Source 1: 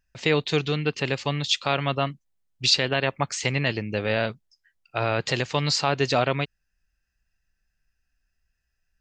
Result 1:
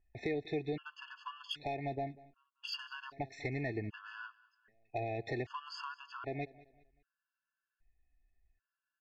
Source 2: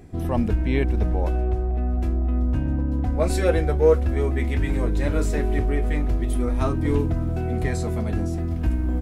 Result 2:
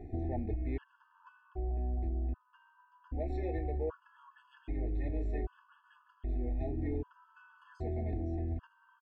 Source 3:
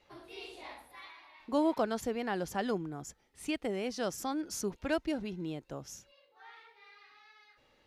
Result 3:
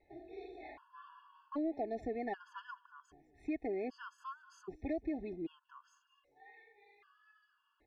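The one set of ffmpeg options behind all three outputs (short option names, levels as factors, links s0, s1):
-af "lowpass=1900,aecho=1:1:2.8:0.61,acompressor=threshold=0.0355:ratio=6,asoftclip=type=tanh:threshold=0.0708,aecho=1:1:193|386|579:0.0891|0.0321|0.0116,afftfilt=real='re*gt(sin(2*PI*0.64*pts/sr)*(1-2*mod(floor(b*sr/1024/870),2)),0)':imag='im*gt(sin(2*PI*0.64*pts/sr)*(1-2*mod(floor(b*sr/1024/870),2)),0)':win_size=1024:overlap=0.75,volume=0.75"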